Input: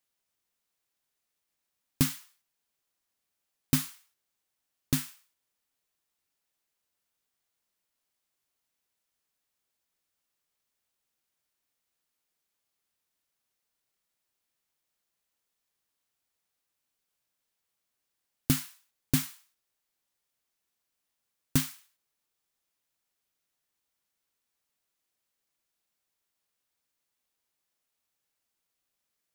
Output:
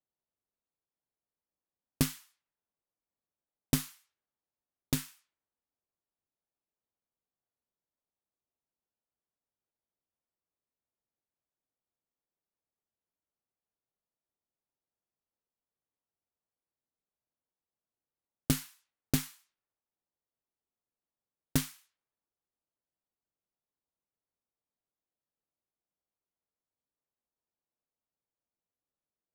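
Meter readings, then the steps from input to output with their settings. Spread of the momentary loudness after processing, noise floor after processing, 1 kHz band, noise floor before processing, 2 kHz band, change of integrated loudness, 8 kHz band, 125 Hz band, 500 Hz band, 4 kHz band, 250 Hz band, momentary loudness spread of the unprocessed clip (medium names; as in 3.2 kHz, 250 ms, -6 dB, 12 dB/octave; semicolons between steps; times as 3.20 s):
14 LU, under -85 dBFS, -1.5 dB, -84 dBFS, -2.5 dB, -3.0 dB, -3.0 dB, -3.0 dB, +2.5 dB, -2.5 dB, -2.5 dB, 12 LU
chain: level-controlled noise filter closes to 830 Hz, open at -34.5 dBFS; Chebyshev shaper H 3 -18 dB, 8 -28 dB, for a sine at -9.5 dBFS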